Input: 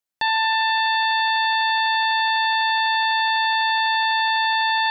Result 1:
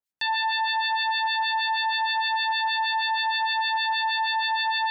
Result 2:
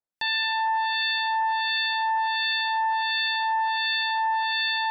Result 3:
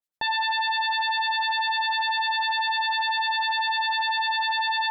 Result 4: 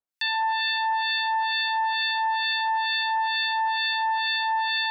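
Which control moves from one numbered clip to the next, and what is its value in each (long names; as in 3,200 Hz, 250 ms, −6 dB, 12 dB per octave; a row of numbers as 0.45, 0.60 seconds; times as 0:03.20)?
two-band tremolo in antiphase, speed: 6.4, 1.4, 10, 2.2 Hertz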